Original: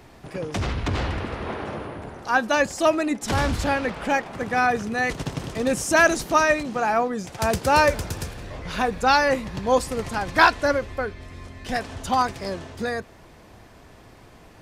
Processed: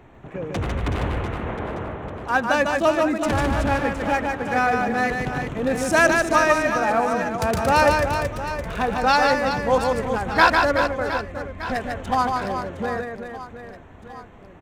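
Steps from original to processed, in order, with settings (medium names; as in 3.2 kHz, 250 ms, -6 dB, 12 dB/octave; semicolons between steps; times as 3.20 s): local Wiener filter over 9 samples; on a send: reverse bouncing-ball echo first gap 150 ms, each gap 1.5×, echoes 5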